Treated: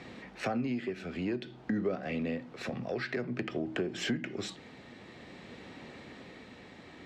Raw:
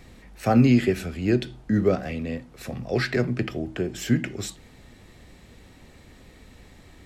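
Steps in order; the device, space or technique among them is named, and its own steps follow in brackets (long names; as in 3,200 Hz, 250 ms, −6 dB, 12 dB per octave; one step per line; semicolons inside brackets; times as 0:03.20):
AM radio (band-pass filter 180–4,000 Hz; downward compressor 5 to 1, threshold −35 dBFS, peak gain reduction 18 dB; soft clipping −25 dBFS, distortion −24 dB; amplitude tremolo 0.52 Hz, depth 29%)
level +5.5 dB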